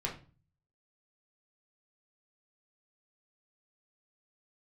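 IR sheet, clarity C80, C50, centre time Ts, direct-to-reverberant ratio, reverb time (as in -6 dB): 15.5 dB, 9.5 dB, 20 ms, -2.5 dB, 0.35 s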